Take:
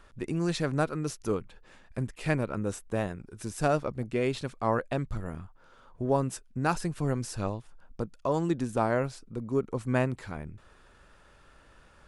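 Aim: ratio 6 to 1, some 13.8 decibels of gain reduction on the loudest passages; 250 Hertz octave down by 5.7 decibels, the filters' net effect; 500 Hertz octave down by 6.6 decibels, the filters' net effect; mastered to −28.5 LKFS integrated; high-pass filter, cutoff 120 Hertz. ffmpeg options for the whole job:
ffmpeg -i in.wav -af "highpass=120,equalizer=frequency=250:width_type=o:gain=-5,equalizer=frequency=500:width_type=o:gain=-7,acompressor=threshold=-40dB:ratio=6,volume=16.5dB" out.wav

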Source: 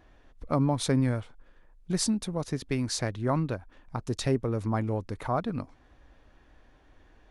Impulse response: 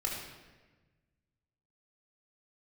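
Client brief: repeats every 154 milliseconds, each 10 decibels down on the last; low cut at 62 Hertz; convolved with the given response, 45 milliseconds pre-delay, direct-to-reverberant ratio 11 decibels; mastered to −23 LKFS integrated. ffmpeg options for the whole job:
-filter_complex "[0:a]highpass=62,aecho=1:1:154|308|462|616:0.316|0.101|0.0324|0.0104,asplit=2[link_01][link_02];[1:a]atrim=start_sample=2205,adelay=45[link_03];[link_02][link_03]afir=irnorm=-1:irlink=0,volume=-15.5dB[link_04];[link_01][link_04]amix=inputs=2:normalize=0,volume=6.5dB"

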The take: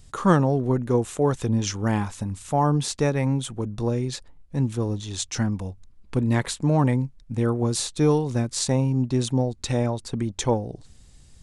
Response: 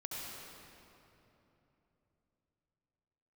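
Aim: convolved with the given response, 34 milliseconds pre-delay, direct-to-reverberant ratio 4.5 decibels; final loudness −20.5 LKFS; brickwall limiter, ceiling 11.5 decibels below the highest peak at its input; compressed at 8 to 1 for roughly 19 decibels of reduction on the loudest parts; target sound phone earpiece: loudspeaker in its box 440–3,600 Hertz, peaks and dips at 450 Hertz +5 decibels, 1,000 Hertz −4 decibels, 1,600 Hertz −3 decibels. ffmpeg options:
-filter_complex "[0:a]acompressor=threshold=-34dB:ratio=8,alimiter=level_in=5dB:limit=-24dB:level=0:latency=1,volume=-5dB,asplit=2[link_01][link_02];[1:a]atrim=start_sample=2205,adelay=34[link_03];[link_02][link_03]afir=irnorm=-1:irlink=0,volume=-5.5dB[link_04];[link_01][link_04]amix=inputs=2:normalize=0,highpass=440,equalizer=frequency=450:width_type=q:width=4:gain=5,equalizer=frequency=1000:width_type=q:width=4:gain=-4,equalizer=frequency=1600:width_type=q:width=4:gain=-3,lowpass=frequency=3600:width=0.5412,lowpass=frequency=3600:width=1.3066,volume=24dB"

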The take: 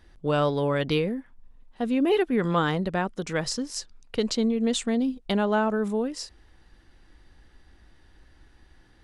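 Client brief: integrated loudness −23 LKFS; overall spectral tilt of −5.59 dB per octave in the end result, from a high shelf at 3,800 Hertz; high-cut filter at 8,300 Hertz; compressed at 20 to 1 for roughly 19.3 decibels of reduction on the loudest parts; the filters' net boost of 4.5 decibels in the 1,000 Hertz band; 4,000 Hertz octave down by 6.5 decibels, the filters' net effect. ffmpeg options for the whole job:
ffmpeg -i in.wav -af "lowpass=8300,equalizer=frequency=1000:width_type=o:gain=6.5,highshelf=frequency=3800:gain=-7.5,equalizer=frequency=4000:width_type=o:gain=-4,acompressor=threshold=-36dB:ratio=20,volume=18.5dB" out.wav

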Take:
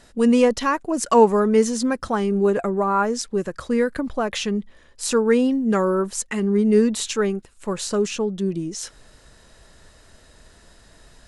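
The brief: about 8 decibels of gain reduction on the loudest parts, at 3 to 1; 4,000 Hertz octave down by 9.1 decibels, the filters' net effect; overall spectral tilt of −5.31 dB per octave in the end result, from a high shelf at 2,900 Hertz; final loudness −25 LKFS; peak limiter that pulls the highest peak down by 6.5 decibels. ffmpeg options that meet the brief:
ffmpeg -i in.wav -af "highshelf=frequency=2900:gain=-8,equalizer=frequency=4000:width_type=o:gain=-5.5,acompressor=threshold=-20dB:ratio=3,volume=1.5dB,alimiter=limit=-16dB:level=0:latency=1" out.wav

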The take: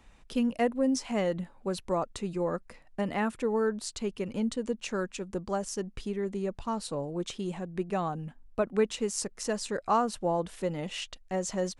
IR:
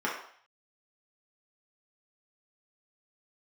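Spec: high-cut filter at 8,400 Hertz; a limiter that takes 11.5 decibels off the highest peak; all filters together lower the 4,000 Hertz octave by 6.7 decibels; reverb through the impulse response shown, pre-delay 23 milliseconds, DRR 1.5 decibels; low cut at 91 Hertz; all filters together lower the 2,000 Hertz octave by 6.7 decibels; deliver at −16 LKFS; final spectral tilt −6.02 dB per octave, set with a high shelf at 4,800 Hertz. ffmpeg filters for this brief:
-filter_complex "[0:a]highpass=91,lowpass=8400,equalizer=frequency=2000:width_type=o:gain=-7,equalizer=frequency=4000:width_type=o:gain=-3.5,highshelf=frequency=4800:gain=-5.5,alimiter=level_in=3dB:limit=-24dB:level=0:latency=1,volume=-3dB,asplit=2[link_01][link_02];[1:a]atrim=start_sample=2205,adelay=23[link_03];[link_02][link_03]afir=irnorm=-1:irlink=0,volume=-11.5dB[link_04];[link_01][link_04]amix=inputs=2:normalize=0,volume=19dB"

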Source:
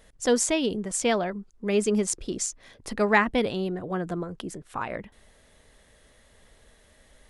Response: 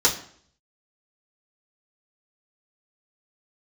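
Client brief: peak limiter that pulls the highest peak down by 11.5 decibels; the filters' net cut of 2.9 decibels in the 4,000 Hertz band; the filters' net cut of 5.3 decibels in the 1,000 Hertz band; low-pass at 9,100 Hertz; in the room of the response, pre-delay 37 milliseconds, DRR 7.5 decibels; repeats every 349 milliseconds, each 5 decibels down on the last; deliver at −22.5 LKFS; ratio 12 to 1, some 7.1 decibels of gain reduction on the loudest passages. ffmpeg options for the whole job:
-filter_complex "[0:a]lowpass=9100,equalizer=frequency=1000:width_type=o:gain=-7,equalizer=frequency=4000:width_type=o:gain=-3.5,acompressor=threshold=-25dB:ratio=12,alimiter=level_in=2.5dB:limit=-24dB:level=0:latency=1,volume=-2.5dB,aecho=1:1:349|698|1047|1396|1745|2094|2443:0.562|0.315|0.176|0.0988|0.0553|0.031|0.0173,asplit=2[link_01][link_02];[1:a]atrim=start_sample=2205,adelay=37[link_03];[link_02][link_03]afir=irnorm=-1:irlink=0,volume=-23dB[link_04];[link_01][link_04]amix=inputs=2:normalize=0,volume=11.5dB"

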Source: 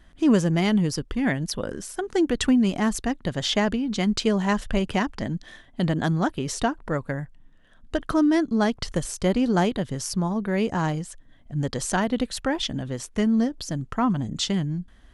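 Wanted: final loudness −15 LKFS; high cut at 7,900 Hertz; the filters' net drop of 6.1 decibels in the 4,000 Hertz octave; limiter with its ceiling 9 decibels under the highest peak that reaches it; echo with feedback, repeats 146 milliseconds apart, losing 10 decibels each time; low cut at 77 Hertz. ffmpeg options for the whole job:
ffmpeg -i in.wav -af "highpass=77,lowpass=7900,equalizer=frequency=4000:width_type=o:gain=-8,alimiter=limit=-18dB:level=0:latency=1,aecho=1:1:146|292|438|584:0.316|0.101|0.0324|0.0104,volume=12dB" out.wav

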